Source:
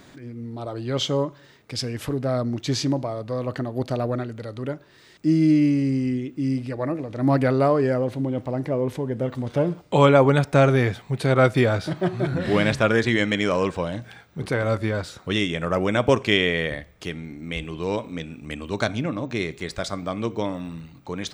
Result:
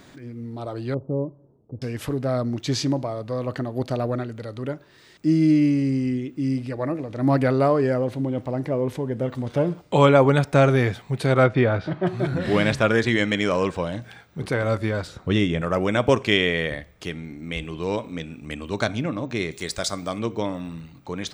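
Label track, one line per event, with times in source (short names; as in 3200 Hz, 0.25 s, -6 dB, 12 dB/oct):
0.940000	1.820000	Gaussian blur sigma 13 samples
11.440000	12.070000	LPF 2700 Hz
15.070000	15.620000	tilt -2 dB/oct
19.510000	20.190000	tone controls bass -2 dB, treble +10 dB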